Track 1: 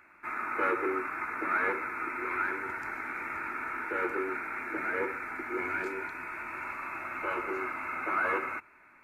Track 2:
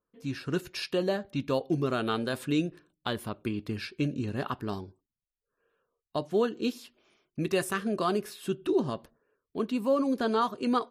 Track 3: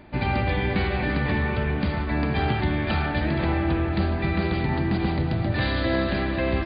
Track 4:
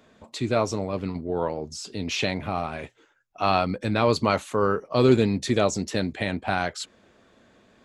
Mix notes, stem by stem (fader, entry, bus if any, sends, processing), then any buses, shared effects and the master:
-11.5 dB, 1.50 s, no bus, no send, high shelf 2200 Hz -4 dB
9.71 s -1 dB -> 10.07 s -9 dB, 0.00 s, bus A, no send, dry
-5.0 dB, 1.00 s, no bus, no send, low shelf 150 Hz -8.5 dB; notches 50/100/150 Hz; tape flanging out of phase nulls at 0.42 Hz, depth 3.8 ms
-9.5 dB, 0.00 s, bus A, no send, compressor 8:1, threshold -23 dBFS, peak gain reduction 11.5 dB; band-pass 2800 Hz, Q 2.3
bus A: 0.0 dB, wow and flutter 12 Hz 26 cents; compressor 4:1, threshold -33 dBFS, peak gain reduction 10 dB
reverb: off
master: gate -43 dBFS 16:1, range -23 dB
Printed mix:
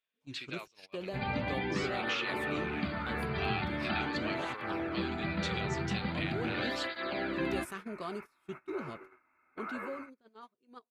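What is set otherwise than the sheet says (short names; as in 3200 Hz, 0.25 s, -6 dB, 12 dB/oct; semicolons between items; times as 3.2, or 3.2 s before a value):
stem 2 -1.0 dB -> -11.5 dB; stem 4 -9.5 dB -> +1.0 dB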